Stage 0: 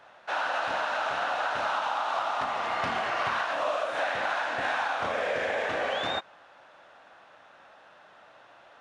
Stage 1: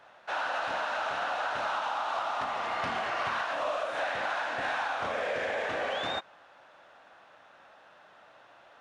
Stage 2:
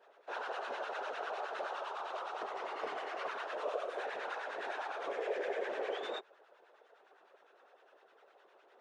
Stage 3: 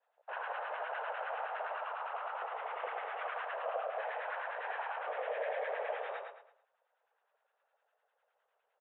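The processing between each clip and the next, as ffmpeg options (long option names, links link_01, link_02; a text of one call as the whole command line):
ffmpeg -i in.wav -af "asoftclip=type=tanh:threshold=-18.5dB,volume=-2dB" out.wav
ffmpeg -i in.wav -filter_complex "[0:a]afftfilt=real='hypot(re,im)*cos(2*PI*random(0))':imag='hypot(re,im)*sin(2*PI*random(1))':win_size=512:overlap=0.75,highpass=frequency=400:width_type=q:width=4.9,acrossover=split=990[link_01][link_02];[link_01]aeval=exprs='val(0)*(1-0.7/2+0.7/2*cos(2*PI*9.8*n/s))':channel_layout=same[link_03];[link_02]aeval=exprs='val(0)*(1-0.7/2-0.7/2*cos(2*PI*9.8*n/s))':channel_layout=same[link_04];[link_03][link_04]amix=inputs=2:normalize=0,volume=-1.5dB" out.wav
ffmpeg -i in.wav -filter_complex "[0:a]afwtdn=0.00447,asplit=2[link_01][link_02];[link_02]aecho=0:1:110|220|330|440:0.596|0.203|0.0689|0.0234[link_03];[link_01][link_03]amix=inputs=2:normalize=0,highpass=frequency=440:width_type=q:width=0.5412,highpass=frequency=440:width_type=q:width=1.307,lowpass=frequency=3500:width_type=q:width=0.5176,lowpass=frequency=3500:width_type=q:width=0.7071,lowpass=frequency=3500:width_type=q:width=1.932,afreqshift=56" out.wav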